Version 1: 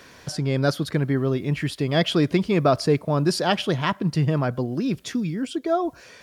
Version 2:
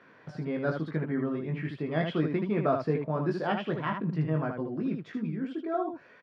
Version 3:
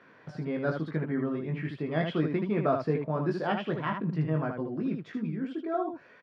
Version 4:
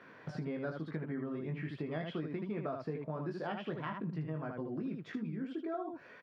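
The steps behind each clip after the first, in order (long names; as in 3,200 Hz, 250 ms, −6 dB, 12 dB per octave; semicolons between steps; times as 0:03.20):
Chebyshev band-pass filter 160–1,800 Hz, order 2; on a send: ambience of single reflections 19 ms −4.5 dB, 78 ms −5.5 dB; on the sum: level −8.5 dB
no processing that can be heard
downward compressor 6 to 1, threshold −37 dBFS, peak gain reduction 15 dB; level +1 dB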